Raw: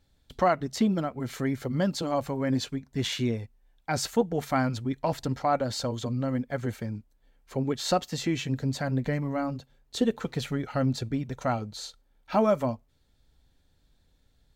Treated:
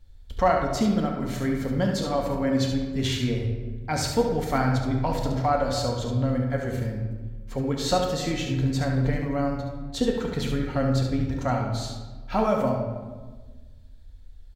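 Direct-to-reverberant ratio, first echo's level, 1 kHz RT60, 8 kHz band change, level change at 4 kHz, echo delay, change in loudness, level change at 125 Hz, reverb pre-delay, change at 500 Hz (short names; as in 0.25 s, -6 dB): 0.0 dB, -7.0 dB, 1.3 s, +2.0 dB, +2.5 dB, 71 ms, +3.0 dB, +5.0 dB, 4 ms, +3.0 dB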